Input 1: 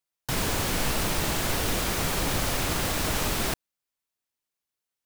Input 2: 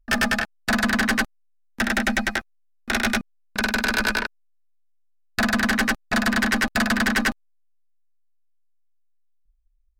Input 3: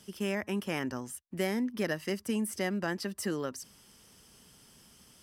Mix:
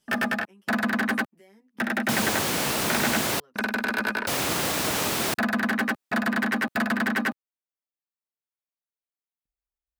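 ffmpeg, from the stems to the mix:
-filter_complex "[0:a]adelay=1800,volume=2.5dB,asplit=3[a][b][c];[a]atrim=end=3.4,asetpts=PTS-STARTPTS,afade=t=out:st=3.396:d=0.004:c=hsin[d];[b]atrim=start=3.4:end=4.27,asetpts=PTS-STARTPTS,volume=0[e];[c]atrim=start=4.27,asetpts=PTS-STARTPTS,afade=t=in:d=0.004:c=hsin[f];[d][e][f]concat=n=3:v=0:a=1[g];[1:a]equalizer=f=6.2k:w=0.6:g=-11.5,volume=-2dB[h];[2:a]acompressor=threshold=-45dB:ratio=2.5,asplit=2[i][j];[j]adelay=9.6,afreqshift=-0.87[k];[i][k]amix=inputs=2:normalize=1,volume=-10dB[l];[g][h][l]amix=inputs=3:normalize=0,highpass=160"

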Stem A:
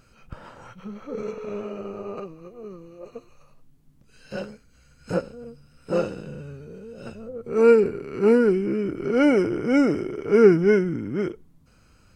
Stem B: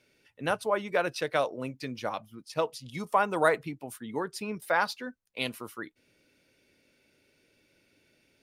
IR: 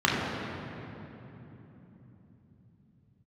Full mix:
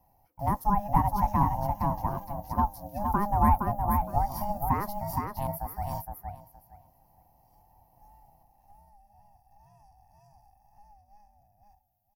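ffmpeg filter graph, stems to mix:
-filter_complex "[0:a]highpass=f=1.4k:p=1,acompressor=threshold=-33dB:ratio=6,aexciter=amount=5.6:drive=3.6:freq=2.3k,volume=-2.5dB,asplit=2[a][b];[b]volume=-23.5dB[c];[1:a]volume=2dB,asplit=3[d][e][f];[e]volume=-4.5dB[g];[f]apad=whole_len=535873[h];[a][h]sidechaingate=range=-33dB:threshold=-54dB:ratio=16:detection=peak[i];[c][g]amix=inputs=2:normalize=0,aecho=0:1:466|932|1398:1|0.19|0.0361[j];[i][d][j]amix=inputs=3:normalize=0,firequalizer=gain_entry='entry(200,0);entry(330,11);entry(660,2);entry(960,-14);entry(1600,-13);entry(3300,-30);entry(5500,-17);entry(8800,-22);entry(12000,2)':delay=0.05:min_phase=1,aexciter=amount=1.7:drive=7.5:freq=4.3k,aeval=exprs='val(0)*sin(2*PI*410*n/s)':c=same"

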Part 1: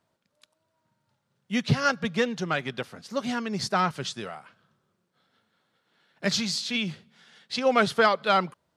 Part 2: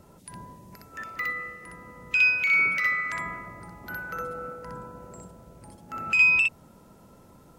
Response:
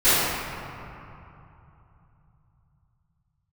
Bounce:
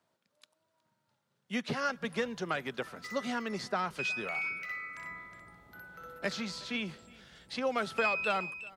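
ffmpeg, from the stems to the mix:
-filter_complex "[0:a]lowshelf=f=120:g=-11,acrossover=split=210|2400|7400[a][b][c][d];[a]acompressor=threshold=-47dB:ratio=4[e];[b]acompressor=threshold=-28dB:ratio=4[f];[c]acompressor=threshold=-45dB:ratio=4[g];[d]acompressor=threshold=-56dB:ratio=4[h];[e][f][g][h]amix=inputs=4:normalize=0,volume=-2dB,asplit=2[i][j];[j]volume=-23.5dB[k];[1:a]adelay=1850,volume=-14.5dB,asplit=2[l][m];[m]volume=-8.5dB[n];[k][n]amix=inputs=2:normalize=0,aecho=0:1:365:1[o];[i][l][o]amix=inputs=3:normalize=0"

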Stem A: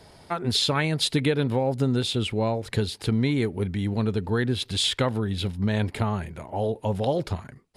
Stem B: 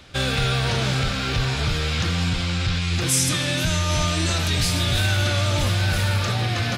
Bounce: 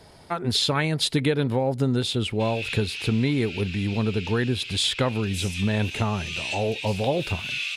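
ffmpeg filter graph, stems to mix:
-filter_complex "[0:a]volume=0.5dB,asplit=2[a][b];[1:a]highpass=f=2.6k:t=q:w=7.6,adelay=2250,volume=-10.5dB[c];[b]apad=whole_len=398017[d];[c][d]sidechaincompress=threshold=-34dB:ratio=3:attack=16:release=258[e];[a][e]amix=inputs=2:normalize=0"

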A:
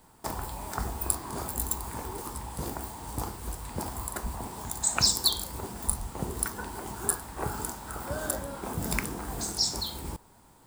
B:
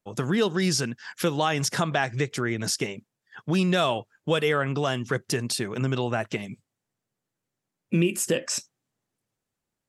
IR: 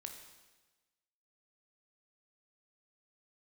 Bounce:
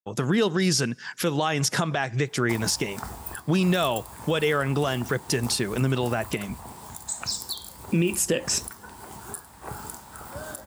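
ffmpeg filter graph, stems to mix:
-filter_complex "[0:a]highpass=78,equalizer=f=330:w=1:g=-4.5,alimiter=limit=-16dB:level=0:latency=1:release=441,adelay=2250,volume=-1.5dB[a];[1:a]agate=range=-33dB:threshold=-50dB:ratio=3:detection=peak,volume=3dB,asplit=2[b][c];[c]volume=-20dB[d];[2:a]atrim=start_sample=2205[e];[d][e]afir=irnorm=-1:irlink=0[f];[a][b][f]amix=inputs=3:normalize=0,alimiter=limit=-13dB:level=0:latency=1:release=127"

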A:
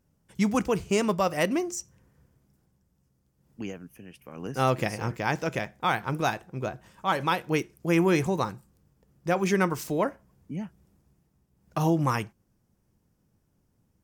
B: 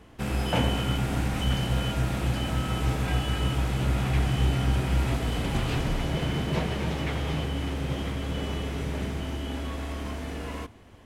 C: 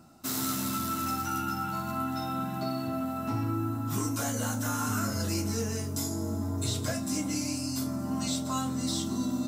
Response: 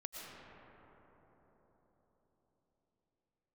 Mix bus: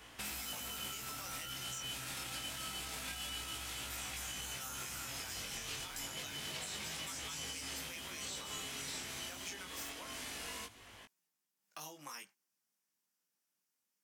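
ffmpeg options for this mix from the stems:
-filter_complex "[0:a]highpass=f=180:w=0.5412,highpass=f=180:w=1.3066,tiltshelf=f=970:g=-4,acompressor=threshold=-26dB:ratio=4,volume=-13dB,asplit=2[a][b];[1:a]alimiter=limit=-21.5dB:level=0:latency=1:release=34,volume=0.5dB[c];[2:a]volume=-10.5dB[d];[b]apad=whole_len=487446[e];[c][e]sidechaincompress=threshold=-46dB:ratio=8:attack=16:release=186[f];[a][f][d]amix=inputs=3:normalize=0,tiltshelf=f=830:g=-10,flanger=delay=18.5:depth=4:speed=0.27,acrossover=split=570|3900[g][h][i];[g]acompressor=threshold=-53dB:ratio=4[j];[h]acompressor=threshold=-49dB:ratio=4[k];[i]acompressor=threshold=-44dB:ratio=4[l];[j][k][l]amix=inputs=3:normalize=0"

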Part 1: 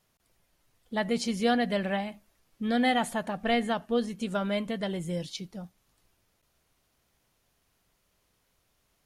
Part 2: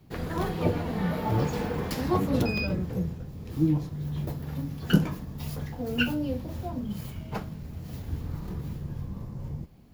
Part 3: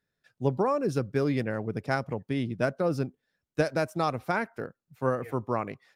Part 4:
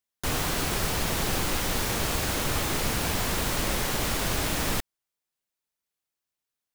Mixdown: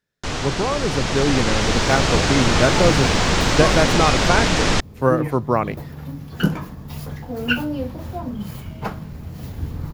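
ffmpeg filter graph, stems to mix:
-filter_complex "[1:a]adynamicequalizer=threshold=0.00562:dfrequency=1200:dqfactor=0.82:tfrequency=1200:tqfactor=0.82:attack=5:release=100:ratio=0.375:range=3:mode=boostabove:tftype=bell,adelay=1500,volume=-8.5dB[a];[2:a]volume=2dB[b];[3:a]lowpass=f=6.8k:w=0.5412,lowpass=f=6.8k:w=1.3066,volume=2.5dB[c];[a][b][c]amix=inputs=3:normalize=0,dynaudnorm=f=800:g=3:m=14dB"

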